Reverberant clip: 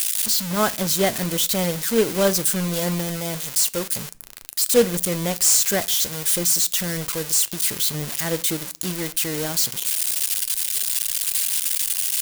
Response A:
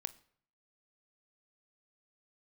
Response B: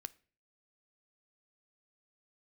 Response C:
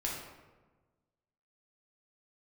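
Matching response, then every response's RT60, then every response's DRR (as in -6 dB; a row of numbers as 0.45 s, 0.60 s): B; 0.60 s, 0.40 s, 1.3 s; 13.5 dB, 14.5 dB, -4.0 dB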